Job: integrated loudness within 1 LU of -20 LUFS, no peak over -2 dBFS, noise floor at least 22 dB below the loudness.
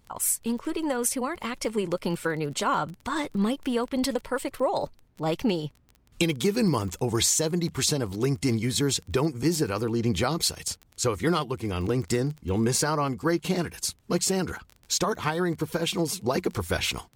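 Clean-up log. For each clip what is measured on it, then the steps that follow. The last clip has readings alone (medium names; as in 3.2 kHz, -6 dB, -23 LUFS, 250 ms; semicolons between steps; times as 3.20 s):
tick rate 19 per s; loudness -27.0 LUFS; peak level -11.0 dBFS; loudness target -20.0 LUFS
-> de-click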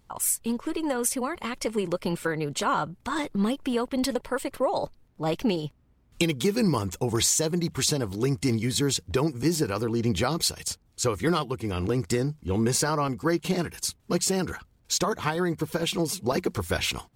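tick rate 0 per s; loudness -27.0 LUFS; peak level -11.0 dBFS; loudness target -20.0 LUFS
-> trim +7 dB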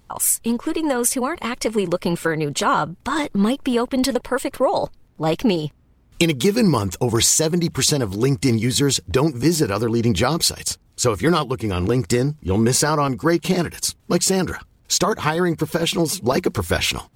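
loudness -20.0 LUFS; peak level -4.0 dBFS; noise floor -56 dBFS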